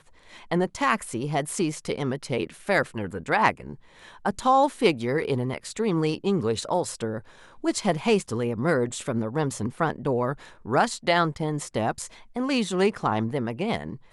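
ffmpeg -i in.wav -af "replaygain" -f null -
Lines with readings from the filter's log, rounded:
track_gain = +5.1 dB
track_peak = 0.340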